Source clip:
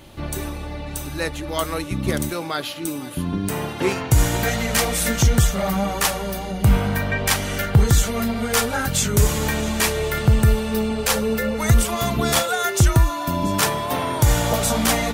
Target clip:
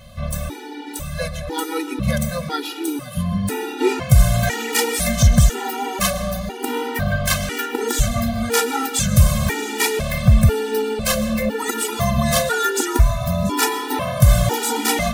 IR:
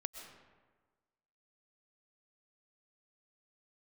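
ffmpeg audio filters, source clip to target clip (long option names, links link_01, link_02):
-filter_complex "[0:a]asplit=2[link_01][link_02];[link_02]asetrate=55563,aresample=44100,atempo=0.793701,volume=-14dB[link_03];[link_01][link_03]amix=inputs=2:normalize=0,asplit=2[link_04][link_05];[1:a]atrim=start_sample=2205,lowshelf=frequency=430:gain=2[link_06];[link_05][link_06]afir=irnorm=-1:irlink=0,volume=2.5dB[link_07];[link_04][link_07]amix=inputs=2:normalize=0,afftfilt=real='re*gt(sin(2*PI*1*pts/sr)*(1-2*mod(floor(b*sr/1024/250),2)),0)':imag='im*gt(sin(2*PI*1*pts/sr)*(1-2*mod(floor(b*sr/1024/250),2)),0)':win_size=1024:overlap=0.75,volume=-2.5dB"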